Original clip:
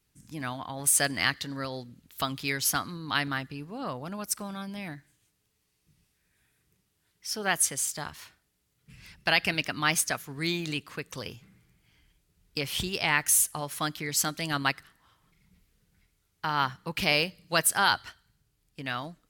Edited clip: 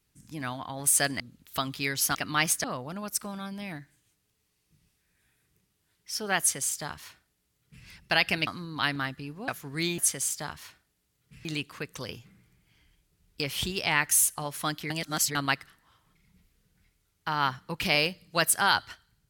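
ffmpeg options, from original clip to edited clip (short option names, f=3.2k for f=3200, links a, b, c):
-filter_complex "[0:a]asplit=10[a][b][c][d][e][f][g][h][i][j];[a]atrim=end=1.202[k];[b]atrim=start=1.838:end=2.792[l];[c]atrim=start=9.628:end=10.122[m];[d]atrim=start=3.798:end=9.632[n];[e]atrim=start=2.788:end=3.802[o];[f]atrim=start=10.118:end=10.622[p];[g]atrim=start=7.548:end=9.022[q];[h]atrim=start=10.618:end=14.072[r];[i]atrim=start=14.068:end=14.522,asetpts=PTS-STARTPTS,areverse[s];[j]atrim=start=14.518[t];[k][l]acrossfade=d=0.004:c1=hsin:c2=hsin[u];[u][m]acrossfade=d=0.004:c1=hsin:c2=hsin[v];[v][n]acrossfade=d=0.004:c1=hsin:c2=hsin[w];[w][o]acrossfade=d=0.004:c1=hsin:c2=hsin[x];[x][p]acrossfade=d=0.004:c1=hsin:c2=hsin[y];[y][q]acrossfade=d=0.004:c1=hsin:c2=hsin[z];[z][r]acrossfade=d=0.004:c1=hsin:c2=hsin[aa];[aa][s]acrossfade=d=0.004:c1=hsin:c2=hsin[ab];[ab][t]acrossfade=d=0.004:c1=hsin:c2=hsin"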